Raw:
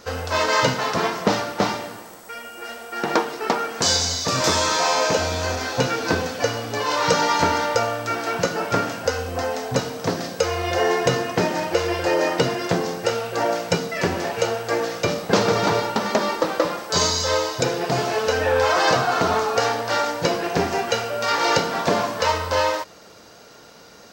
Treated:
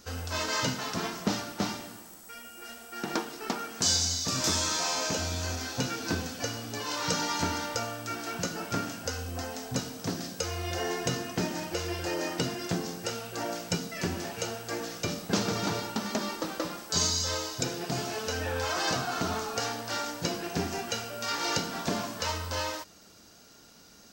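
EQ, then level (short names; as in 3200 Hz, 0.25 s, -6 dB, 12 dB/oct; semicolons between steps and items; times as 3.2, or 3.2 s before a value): graphic EQ 125/500/1000/2000/4000 Hz -6/-12/-8/-7/-4 dB; -2.0 dB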